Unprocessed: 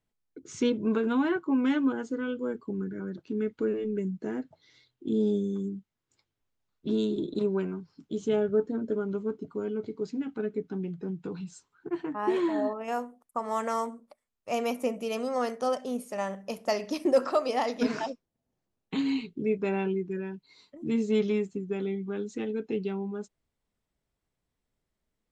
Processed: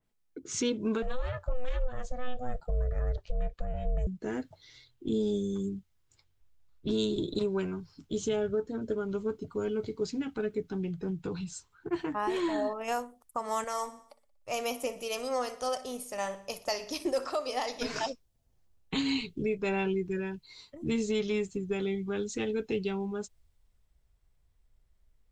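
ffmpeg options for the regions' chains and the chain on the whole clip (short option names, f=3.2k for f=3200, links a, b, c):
-filter_complex "[0:a]asettb=1/sr,asplit=3[a][b][c];[a]atrim=end=1.024[d];[b]atrim=start=1.02:end=4.07,asetpts=PTS-STARTPTS,afade=t=in:d=0.004:c=qsin,afade=t=out:st=3.046:d=0.004:c=qsin,aeval=exprs='val(0)*sin(2*PI*250*n/s)':c=same,acompressor=threshold=-32dB:ratio=3:attack=3.2:release=140:knee=1:detection=peak[e];[c]atrim=start=4.066[f];[d][e]acrossfade=d=0.004:c1=hsin:c2=qsin[g];[g][f]acrossfade=d=0.004:c1=qsin:c2=hsin,asettb=1/sr,asplit=3[h][i][j];[h]atrim=end=13.644[k];[i]atrim=start=13.64:end=17.96,asetpts=PTS-STARTPTS,afade=t=in:d=0.004:c=qsin,afade=t=out:st=4.316:d=0.004:c=qsin,equalizer=f=220:t=o:w=0.23:g=-7,flanger=delay=2.6:depth=1.4:regen=81:speed=1.4:shape=sinusoidal,aecho=1:1:60|120|180|240|300:0.141|0.0791|0.0443|0.0248|0.0139,atrim=end_sample=190512[l];[j]atrim=start=17.956[m];[k][l]acrossfade=d=0.004:c1=hsin:c2=qsin[n];[n][m]acrossfade=d=0.004:c1=qsin:c2=hsin,asubboost=boost=8.5:cutoff=74,alimiter=level_in=0.5dB:limit=-24dB:level=0:latency=1:release=422,volume=-0.5dB,adynamicequalizer=threshold=0.00178:dfrequency=2800:dqfactor=0.7:tfrequency=2800:tqfactor=0.7:attack=5:release=100:ratio=0.375:range=4:mode=boostabove:tftype=highshelf,volume=3dB"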